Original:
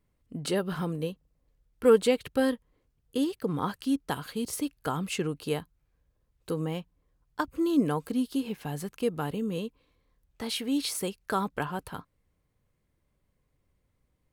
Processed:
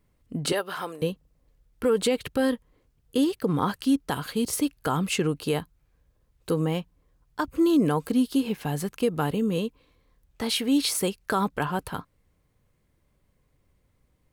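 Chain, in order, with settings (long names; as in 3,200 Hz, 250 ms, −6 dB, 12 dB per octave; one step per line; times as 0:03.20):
0:00.52–0:01.02: high-pass filter 600 Hz 12 dB per octave
brickwall limiter −20 dBFS, peak gain reduction 10.5 dB
level +6 dB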